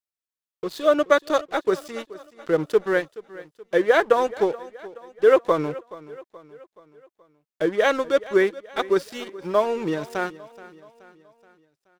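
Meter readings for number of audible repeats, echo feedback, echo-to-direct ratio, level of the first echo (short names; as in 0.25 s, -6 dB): 3, 50%, -17.5 dB, -18.5 dB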